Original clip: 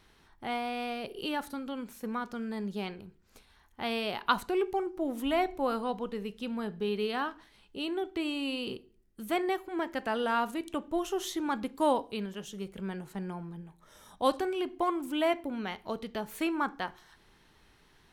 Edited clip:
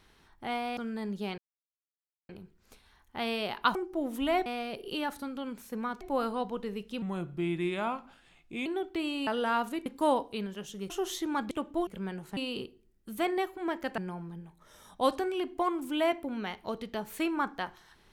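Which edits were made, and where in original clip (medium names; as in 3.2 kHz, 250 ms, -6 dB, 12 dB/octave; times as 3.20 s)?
0.77–2.32 s: move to 5.50 s
2.93 s: insert silence 0.91 s
4.39–4.79 s: delete
6.51–7.87 s: speed 83%
8.48–10.09 s: move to 13.19 s
10.68–11.04 s: swap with 11.65–12.69 s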